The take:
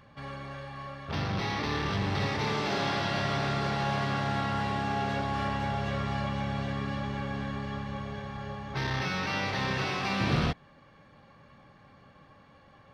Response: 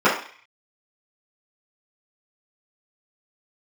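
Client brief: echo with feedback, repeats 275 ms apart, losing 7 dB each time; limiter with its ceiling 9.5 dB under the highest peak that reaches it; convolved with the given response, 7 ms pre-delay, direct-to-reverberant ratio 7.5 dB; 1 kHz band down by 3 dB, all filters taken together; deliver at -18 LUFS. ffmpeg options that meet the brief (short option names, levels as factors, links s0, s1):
-filter_complex "[0:a]equalizer=f=1000:t=o:g=-4,alimiter=level_in=1.19:limit=0.0631:level=0:latency=1,volume=0.841,aecho=1:1:275|550|825|1100|1375:0.447|0.201|0.0905|0.0407|0.0183,asplit=2[s0][s1];[1:a]atrim=start_sample=2205,adelay=7[s2];[s1][s2]afir=irnorm=-1:irlink=0,volume=0.0299[s3];[s0][s3]amix=inputs=2:normalize=0,volume=6.68"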